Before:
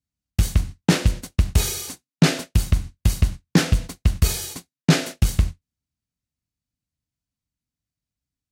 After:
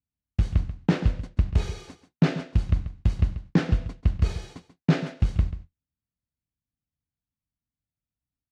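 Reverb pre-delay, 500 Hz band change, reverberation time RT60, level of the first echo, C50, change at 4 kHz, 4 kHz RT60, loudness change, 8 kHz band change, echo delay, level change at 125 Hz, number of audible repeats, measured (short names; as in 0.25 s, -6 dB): none, -4.5 dB, none, -13.0 dB, none, -14.0 dB, none, -4.5 dB, under -20 dB, 0.137 s, -3.5 dB, 1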